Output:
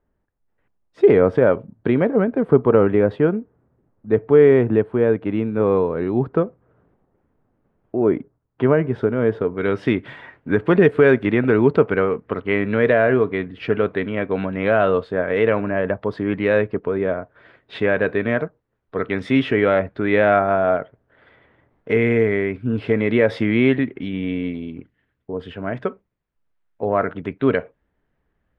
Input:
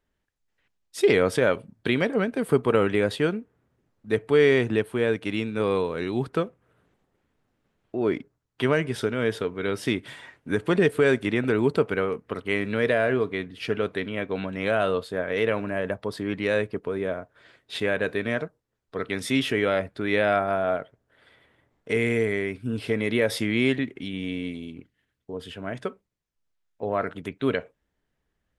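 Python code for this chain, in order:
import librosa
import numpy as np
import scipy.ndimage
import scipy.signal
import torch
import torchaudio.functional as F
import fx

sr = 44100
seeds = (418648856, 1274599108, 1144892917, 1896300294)

y = fx.lowpass(x, sr, hz=fx.steps((0.0, 1100.0), (9.57, 2000.0)), slope=12)
y = F.gain(torch.from_numpy(y), 7.0).numpy()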